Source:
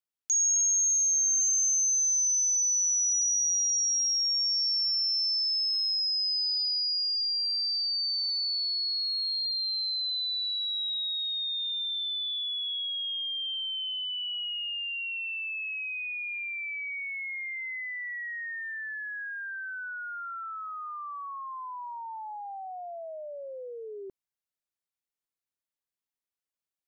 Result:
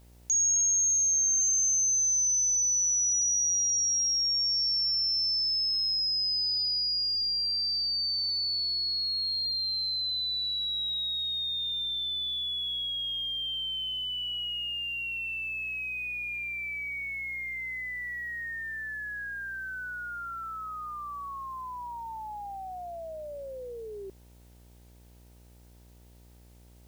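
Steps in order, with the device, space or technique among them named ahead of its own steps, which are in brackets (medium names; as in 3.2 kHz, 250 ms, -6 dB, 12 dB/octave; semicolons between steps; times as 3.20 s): video cassette with head-switching buzz (mains buzz 60 Hz, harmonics 16, -55 dBFS -7 dB/octave; white noise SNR 35 dB)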